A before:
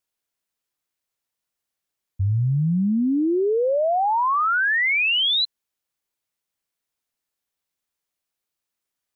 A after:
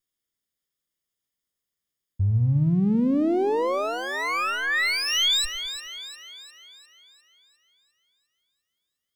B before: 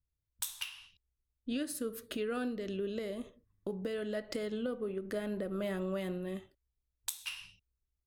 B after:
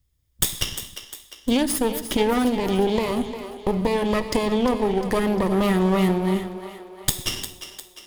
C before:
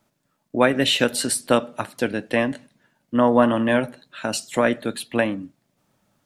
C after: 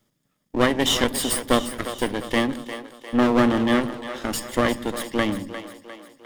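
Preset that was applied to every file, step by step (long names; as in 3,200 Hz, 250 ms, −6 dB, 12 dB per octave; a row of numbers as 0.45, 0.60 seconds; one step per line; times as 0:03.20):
lower of the sound and its delayed copy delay 0.59 ms
parametric band 1,500 Hz −9 dB 0.33 octaves
echo with a time of its own for lows and highs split 310 Hz, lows 102 ms, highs 352 ms, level −11 dB
loudness normalisation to −23 LKFS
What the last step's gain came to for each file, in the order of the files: −0.5, +17.0, +0.5 decibels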